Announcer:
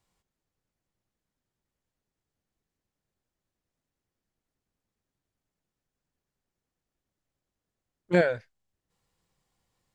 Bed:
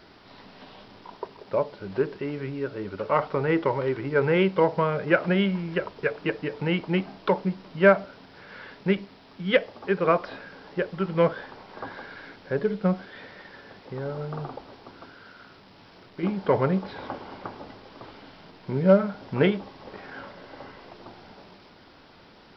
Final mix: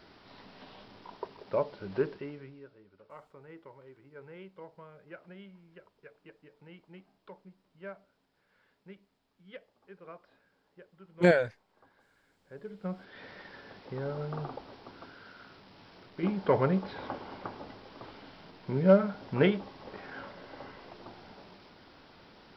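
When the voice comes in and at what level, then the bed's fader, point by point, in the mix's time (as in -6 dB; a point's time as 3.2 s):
3.10 s, 0.0 dB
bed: 2.07 s -4.5 dB
2.86 s -27 dB
12.28 s -27 dB
13.3 s -3.5 dB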